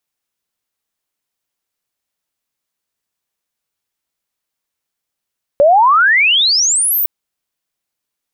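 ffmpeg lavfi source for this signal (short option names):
-f lavfi -i "aevalsrc='pow(10,(-5-7*t/1.46)/20)*sin(2*PI*550*1.46/log(16000/550)*(exp(log(16000/550)*t/1.46)-1))':d=1.46:s=44100"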